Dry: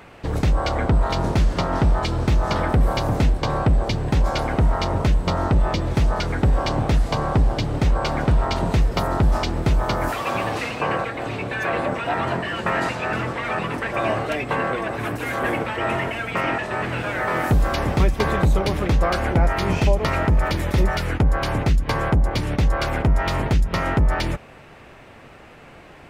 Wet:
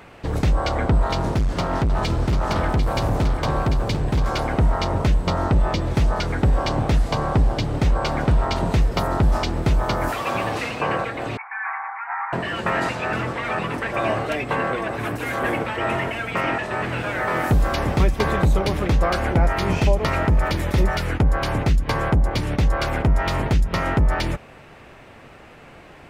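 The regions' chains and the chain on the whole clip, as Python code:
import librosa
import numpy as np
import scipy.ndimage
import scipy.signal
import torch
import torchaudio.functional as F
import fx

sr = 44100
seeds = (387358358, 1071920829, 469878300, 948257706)

y = fx.chain(x, sr, fx.overload_stage(gain_db=17.0),
    fx.echo_single(ms=745, db=-8.0), at=(1.15, 4.39))
y = fx.chain(y, sr, fx.cheby1_bandpass(low_hz=780.0, high_hz=2300.0, order=5),
    fx.air_absorb(metres=87.0), at=(11.37, 12.33))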